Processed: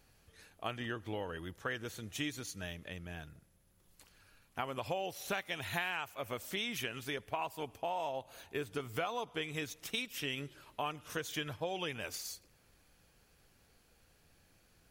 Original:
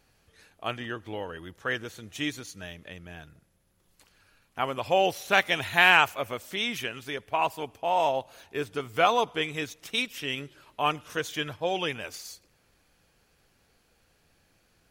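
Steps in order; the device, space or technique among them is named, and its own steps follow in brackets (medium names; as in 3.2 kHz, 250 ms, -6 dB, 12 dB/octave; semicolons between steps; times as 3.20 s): ASMR close-microphone chain (bass shelf 170 Hz +4 dB; compression 8:1, threshold -31 dBFS, peak gain reduction 17 dB; treble shelf 8.8 kHz +5.5 dB); 8.18–8.68 s: band-stop 5.4 kHz, Q 7.5; trim -3 dB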